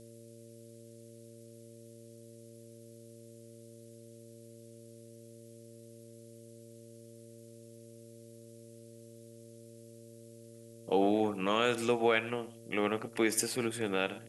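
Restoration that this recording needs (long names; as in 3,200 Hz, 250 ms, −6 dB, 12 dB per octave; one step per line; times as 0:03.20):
hum removal 115.1 Hz, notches 5
broadband denoise 26 dB, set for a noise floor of −53 dBFS
echo removal 115 ms −19.5 dB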